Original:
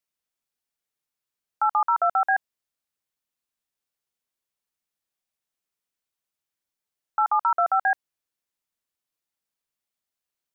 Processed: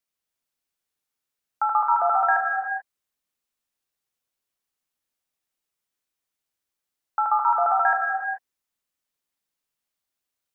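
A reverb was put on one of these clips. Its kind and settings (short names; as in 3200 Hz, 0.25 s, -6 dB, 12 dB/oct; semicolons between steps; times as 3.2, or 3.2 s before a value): non-linear reverb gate 0.46 s flat, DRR 1.5 dB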